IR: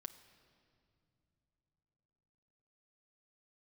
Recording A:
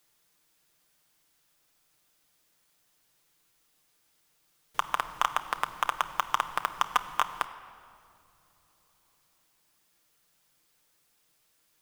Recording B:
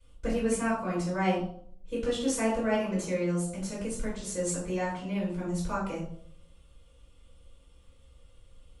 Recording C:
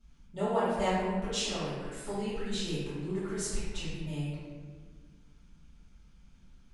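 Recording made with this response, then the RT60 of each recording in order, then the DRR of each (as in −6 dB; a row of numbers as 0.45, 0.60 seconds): A; non-exponential decay, 0.60 s, 1.6 s; 7.0, −10.5, −14.5 decibels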